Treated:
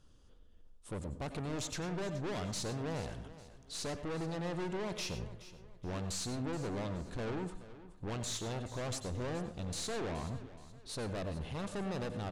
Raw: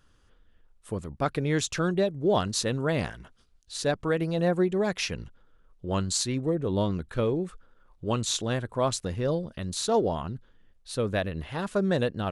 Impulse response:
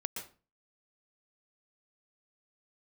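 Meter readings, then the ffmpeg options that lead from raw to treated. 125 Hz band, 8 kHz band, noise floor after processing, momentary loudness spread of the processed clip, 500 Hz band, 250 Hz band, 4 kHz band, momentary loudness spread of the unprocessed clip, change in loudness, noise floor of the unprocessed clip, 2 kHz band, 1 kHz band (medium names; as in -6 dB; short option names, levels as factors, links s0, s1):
-9.0 dB, -9.0 dB, -58 dBFS, 9 LU, -13.0 dB, -11.0 dB, -9.5 dB, 11 LU, -11.5 dB, -62 dBFS, -10.5 dB, -11.0 dB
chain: -filter_complex "[0:a]equalizer=f=1700:w=0.97:g=-11.5,aeval=exprs='(tanh(89.1*val(0)+0.45)-tanh(0.45))/89.1':c=same,lowpass=9300,aecho=1:1:424|848|1272:0.158|0.0571|0.0205,asplit=2[s0][s1];[1:a]atrim=start_sample=2205,asetrate=57330,aresample=44100[s2];[s1][s2]afir=irnorm=-1:irlink=0,volume=1.19[s3];[s0][s3]amix=inputs=2:normalize=0,volume=0.708"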